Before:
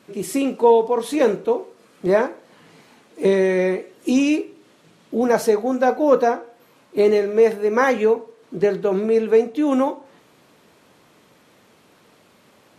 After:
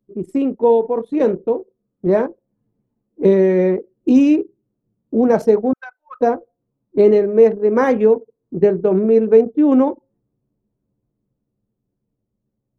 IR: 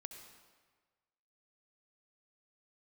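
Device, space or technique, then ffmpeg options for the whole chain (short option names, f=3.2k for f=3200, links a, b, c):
voice memo with heavy noise removal: -filter_complex "[0:a]asettb=1/sr,asplit=3[a][b][c];[a]atrim=end=5.734[d];[b]atrim=start=5.73:end=6.21,asetpts=PTS-STARTPTS,afade=t=in:d=0.004:c=qsin,afade=t=out:st=0.476:d=0.004:c=qsin,highpass=f=1.3k:w=0.5412,highpass=f=1.3k:w=1.3066[e];[c]atrim=start=6.206[f];[d][e]acrossfade=d=0.004:c1=hsin:c2=qsin[g];[g][f]acrossfade=d=0.004:c1=qsin:c2=hsin,anlmdn=158,dynaudnorm=f=360:g=13:m=9dB,tiltshelf=f=730:g=7,volume=-2dB"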